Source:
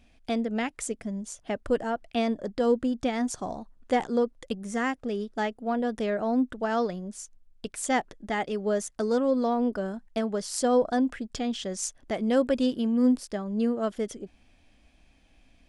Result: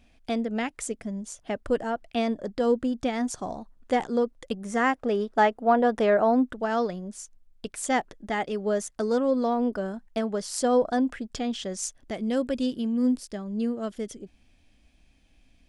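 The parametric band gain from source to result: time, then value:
parametric band 910 Hz 2.6 octaves
0:04.37 +0.5 dB
0:05.11 +10.5 dB
0:06.19 +10.5 dB
0:06.62 +1 dB
0:11.63 +1 dB
0:12.19 −5.5 dB

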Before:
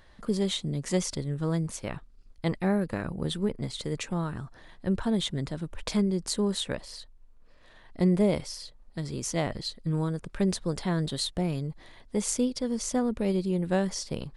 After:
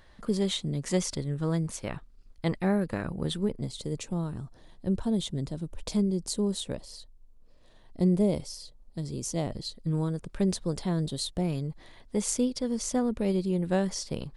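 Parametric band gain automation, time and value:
parametric band 1,700 Hz 1.8 octaves
0:03.31 −0.5 dB
0:03.71 −12 dB
0:09.53 −12 dB
0:09.93 −5 dB
0:10.73 −5 dB
0:11.14 −12 dB
0:11.51 −2 dB

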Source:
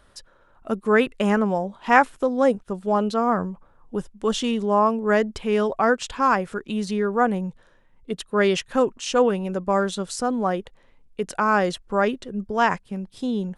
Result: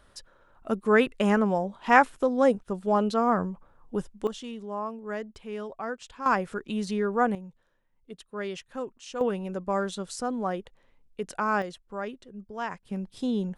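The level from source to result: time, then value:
−2.5 dB
from 0:04.27 −14.5 dB
from 0:06.26 −4 dB
from 0:07.35 −14.5 dB
from 0:09.21 −6.5 dB
from 0:11.62 −13.5 dB
from 0:12.83 −2.5 dB

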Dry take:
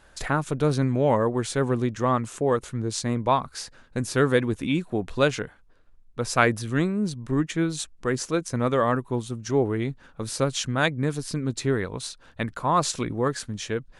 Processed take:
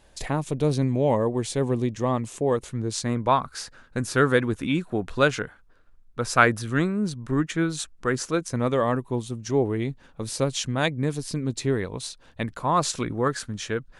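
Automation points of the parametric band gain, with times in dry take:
parametric band 1,400 Hz 0.57 octaves
0:02.21 −12 dB
0:02.64 −6 dB
0:03.24 +5 dB
0:08.19 +5 dB
0:08.79 −5.5 dB
0:12.46 −5.5 dB
0:13.16 +4.5 dB

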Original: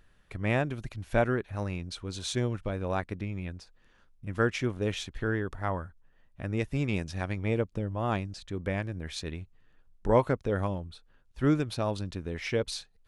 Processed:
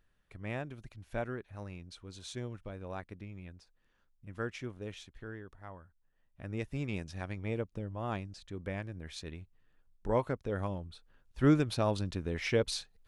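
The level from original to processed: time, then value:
0:04.62 −11 dB
0:05.78 −17.5 dB
0:06.54 −7 dB
0:10.39 −7 dB
0:11.46 0 dB

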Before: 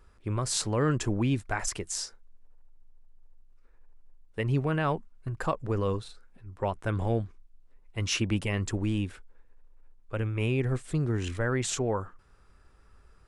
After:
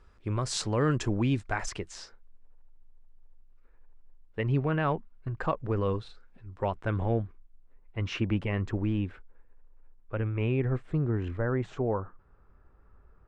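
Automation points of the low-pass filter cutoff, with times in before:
0:01.54 6,200 Hz
0:01.99 3,100 Hz
0:05.70 3,100 Hz
0:06.57 5,400 Hz
0:07.19 2,200 Hz
0:10.55 2,200 Hz
0:11.44 1,300 Hz

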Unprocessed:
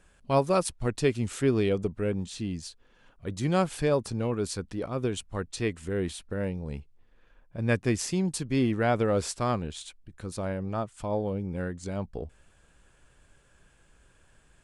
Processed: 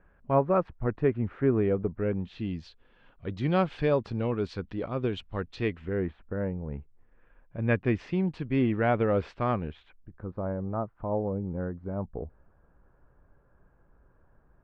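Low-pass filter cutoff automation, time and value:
low-pass filter 24 dB per octave
0:01.88 1,800 Hz
0:02.52 3,600 Hz
0:05.66 3,600 Hz
0:06.14 1,700 Hz
0:06.64 1,700 Hz
0:07.69 2,800 Hz
0:09.61 2,800 Hz
0:10.24 1,300 Hz

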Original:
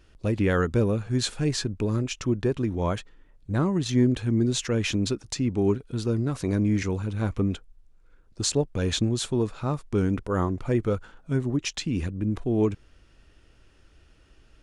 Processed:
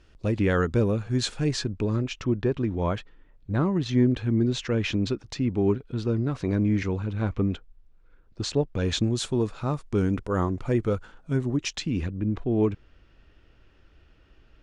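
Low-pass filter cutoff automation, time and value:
0:01.47 7,400 Hz
0:02.21 4,000 Hz
0:08.56 4,000 Hz
0:09.18 9,000 Hz
0:11.61 9,000 Hz
0:12.20 3,700 Hz

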